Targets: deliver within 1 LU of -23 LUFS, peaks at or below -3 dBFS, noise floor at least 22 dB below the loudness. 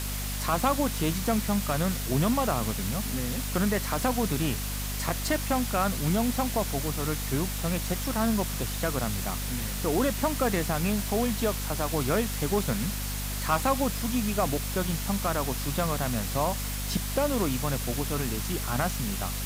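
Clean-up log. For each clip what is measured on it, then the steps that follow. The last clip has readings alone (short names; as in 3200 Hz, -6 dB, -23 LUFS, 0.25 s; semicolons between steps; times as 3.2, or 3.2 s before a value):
hum 50 Hz; harmonics up to 250 Hz; hum level -31 dBFS; noise floor -32 dBFS; noise floor target -50 dBFS; loudness -28.0 LUFS; peak -11.5 dBFS; loudness target -23.0 LUFS
-> de-hum 50 Hz, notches 5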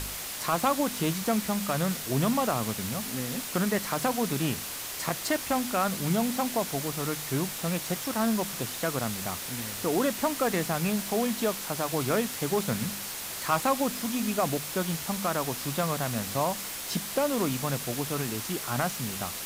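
hum none; noise floor -37 dBFS; noise floor target -51 dBFS
-> denoiser 14 dB, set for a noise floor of -37 dBFS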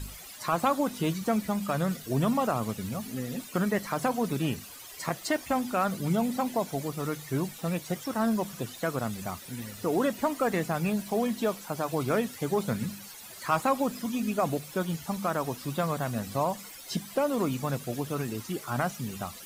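noise floor -46 dBFS; noise floor target -53 dBFS
-> denoiser 7 dB, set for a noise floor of -46 dBFS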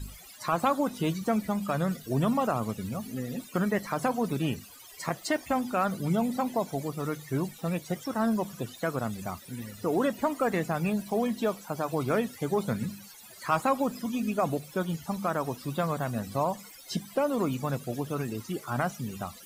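noise floor -49 dBFS; noise floor target -53 dBFS
-> denoiser 6 dB, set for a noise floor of -49 dBFS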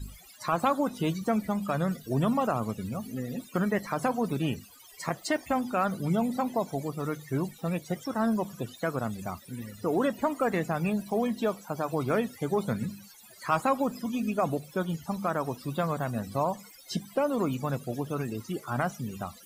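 noise floor -52 dBFS; noise floor target -53 dBFS; loudness -30.5 LUFS; peak -12.5 dBFS; loudness target -23.0 LUFS
-> gain +7.5 dB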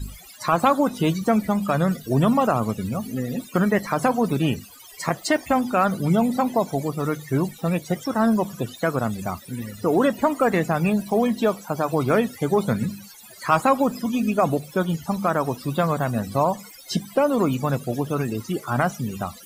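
loudness -23.0 LUFS; peak -5.0 dBFS; noise floor -45 dBFS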